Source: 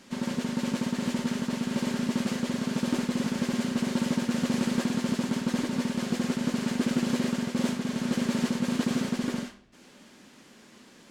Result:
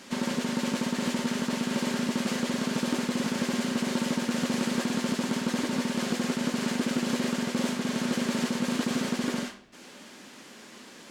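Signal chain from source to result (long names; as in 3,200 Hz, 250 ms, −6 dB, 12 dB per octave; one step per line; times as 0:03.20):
low-shelf EQ 170 Hz −11.5 dB
downward compressor 2.5 to 1, threshold −33 dBFS, peak gain reduction 6 dB
level +7 dB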